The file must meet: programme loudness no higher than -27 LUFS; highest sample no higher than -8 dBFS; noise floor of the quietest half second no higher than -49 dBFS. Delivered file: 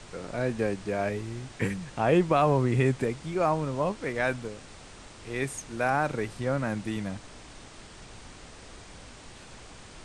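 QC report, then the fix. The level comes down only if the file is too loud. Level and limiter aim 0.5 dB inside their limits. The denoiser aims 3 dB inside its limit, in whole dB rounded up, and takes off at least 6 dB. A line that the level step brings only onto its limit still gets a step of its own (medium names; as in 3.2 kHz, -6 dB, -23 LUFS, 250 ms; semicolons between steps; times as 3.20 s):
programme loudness -28.5 LUFS: pass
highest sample -11.0 dBFS: pass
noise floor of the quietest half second -47 dBFS: fail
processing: noise reduction 6 dB, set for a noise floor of -47 dBFS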